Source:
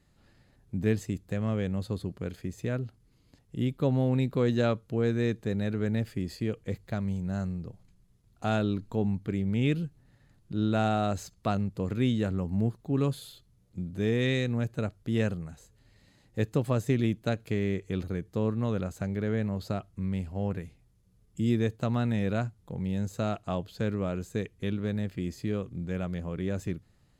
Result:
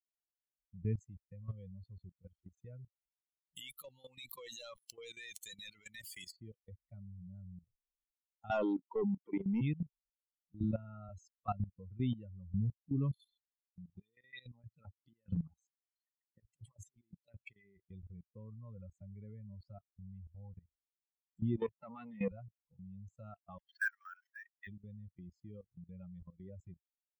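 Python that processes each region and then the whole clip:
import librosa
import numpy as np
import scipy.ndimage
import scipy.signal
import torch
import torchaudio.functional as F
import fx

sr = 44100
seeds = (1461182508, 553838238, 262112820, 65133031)

y = fx.chain(x, sr, fx.pre_emphasis(coefficient=0.97),
    fx.leveller(passes=5),
    fx.env_flatten(amount_pct=100), at=(3.56, 6.31))
y = fx.chain(y, sr, fx.highpass(hz=250.0, slope=24),
    fx.high_shelf(hz=3000.0, db=-6.0),
    fx.leveller(passes=3), at=(8.51, 9.61))
y = fx.chain(y, sr, fx.air_absorb(metres=220.0),
    fx.notch_comb(f0_hz=380.0),
    fx.band_squash(depth_pct=100), at=(10.63, 11.09))
y = fx.chain(y, sr, fx.highpass(hz=95.0, slope=12),
    fx.over_compress(threshold_db=-33.0, ratio=-0.5),
    fx.bell_lfo(hz=3.2, low_hz=760.0, high_hz=4800.0, db=9), at=(13.95, 17.77))
y = fx.chain(y, sr, fx.peak_eq(hz=540.0, db=-3.5, octaves=1.5),
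    fx.leveller(passes=3),
    fx.bandpass_edges(low_hz=240.0, high_hz=3800.0), at=(21.57, 22.32))
y = fx.chain(y, sr, fx.cvsd(bps=32000),
    fx.highpass_res(hz=1600.0, q=11.0),
    fx.quant_companded(bits=4), at=(23.58, 24.67))
y = fx.bin_expand(y, sr, power=3.0)
y = fx.dynamic_eq(y, sr, hz=110.0, q=1.2, threshold_db=-47.0, ratio=4.0, max_db=4)
y = fx.level_steps(y, sr, step_db=17)
y = F.gain(torch.from_numpy(y), 1.5).numpy()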